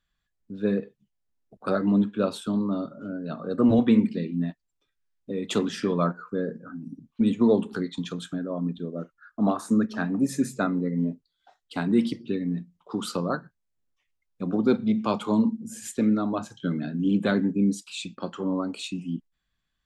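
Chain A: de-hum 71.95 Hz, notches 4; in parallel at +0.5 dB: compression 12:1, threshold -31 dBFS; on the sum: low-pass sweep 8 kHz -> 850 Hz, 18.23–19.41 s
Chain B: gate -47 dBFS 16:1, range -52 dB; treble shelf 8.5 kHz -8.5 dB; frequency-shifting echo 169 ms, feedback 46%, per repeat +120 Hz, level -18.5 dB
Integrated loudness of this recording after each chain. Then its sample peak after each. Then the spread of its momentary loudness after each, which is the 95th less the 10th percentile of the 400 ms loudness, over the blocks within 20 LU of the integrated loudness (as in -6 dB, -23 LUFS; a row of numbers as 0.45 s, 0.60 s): -24.5 LUFS, -26.5 LUFS; -8.0 dBFS, -9.0 dBFS; 10 LU, 13 LU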